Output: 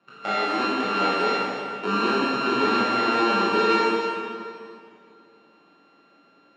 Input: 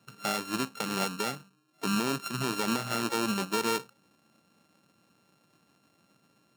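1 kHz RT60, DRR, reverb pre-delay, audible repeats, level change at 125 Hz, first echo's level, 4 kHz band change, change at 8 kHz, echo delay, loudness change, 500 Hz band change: 2.3 s, -8.5 dB, 17 ms, none, -1.0 dB, none, +5.5 dB, -9.0 dB, none, +8.0 dB, +11.0 dB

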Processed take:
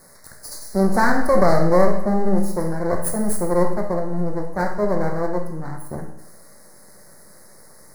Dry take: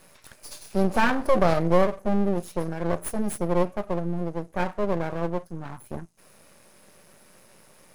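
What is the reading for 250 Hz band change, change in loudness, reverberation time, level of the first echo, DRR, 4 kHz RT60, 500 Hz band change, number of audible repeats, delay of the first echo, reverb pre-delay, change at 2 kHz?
+5.0 dB, +5.0 dB, 0.80 s, none, 3.0 dB, 0.80 s, +5.0 dB, none, none, 16 ms, +4.0 dB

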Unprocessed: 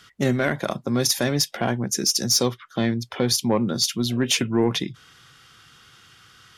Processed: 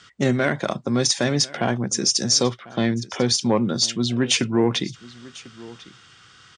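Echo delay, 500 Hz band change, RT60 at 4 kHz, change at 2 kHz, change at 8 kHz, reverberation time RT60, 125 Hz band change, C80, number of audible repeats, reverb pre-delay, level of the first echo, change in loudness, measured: 1.046 s, +1.5 dB, none, +1.5 dB, +1.0 dB, none, +1.0 dB, none, 1, none, -20.5 dB, +1.5 dB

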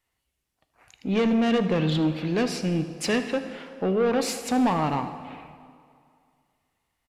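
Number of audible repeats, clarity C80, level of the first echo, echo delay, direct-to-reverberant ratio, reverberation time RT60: 1, 11.5 dB, -17.0 dB, 78 ms, 9.0 dB, 2.2 s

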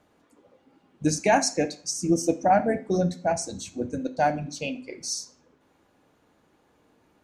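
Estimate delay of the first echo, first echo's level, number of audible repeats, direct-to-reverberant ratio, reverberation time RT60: none, none, none, 9.0 dB, 0.45 s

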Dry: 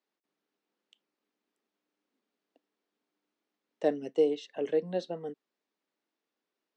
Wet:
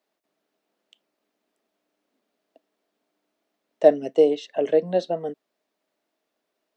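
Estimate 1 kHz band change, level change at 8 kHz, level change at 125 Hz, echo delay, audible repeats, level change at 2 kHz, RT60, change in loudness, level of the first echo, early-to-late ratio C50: +11.5 dB, n/a, +7.0 dB, none, none, +7.0 dB, none, +10.0 dB, none, none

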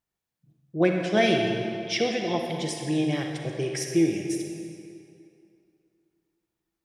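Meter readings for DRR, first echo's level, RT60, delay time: 2.0 dB, none, 2.5 s, none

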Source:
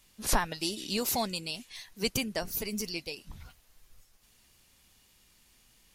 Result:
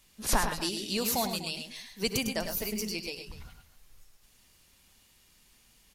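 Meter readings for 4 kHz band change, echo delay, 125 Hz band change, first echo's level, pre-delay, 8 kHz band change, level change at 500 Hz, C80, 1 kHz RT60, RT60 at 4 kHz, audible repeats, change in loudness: +1.0 dB, 66 ms, +1.0 dB, -18.5 dB, none, +1.0 dB, +1.0 dB, none, none, none, 3, +1.0 dB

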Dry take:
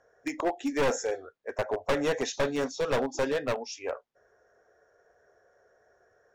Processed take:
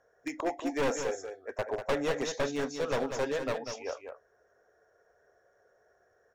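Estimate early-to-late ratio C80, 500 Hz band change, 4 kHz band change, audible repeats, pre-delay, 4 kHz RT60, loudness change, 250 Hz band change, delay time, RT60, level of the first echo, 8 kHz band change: none, -3.0 dB, -3.0 dB, 1, none, none, -3.0 dB, -2.5 dB, 0.194 s, none, -7.5 dB, -3.0 dB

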